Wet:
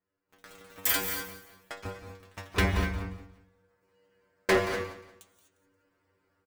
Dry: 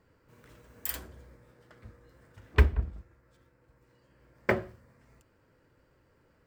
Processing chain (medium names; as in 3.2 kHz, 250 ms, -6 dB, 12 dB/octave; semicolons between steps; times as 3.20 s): bass shelf 160 Hz -11 dB; in parallel at -1 dB: compression, threshold -51 dBFS, peak gain reduction 26.5 dB; on the sum: waveshaping leveller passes 5; level rider gain up to 13.5 dB; inharmonic resonator 94 Hz, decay 0.38 s, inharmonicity 0.002; hard clipper -15 dBFS, distortion -13 dB; on a send: feedback delay 177 ms, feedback 30%, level -14.5 dB; on the sum: gated-style reverb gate 270 ms rising, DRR 7 dB; trim -3.5 dB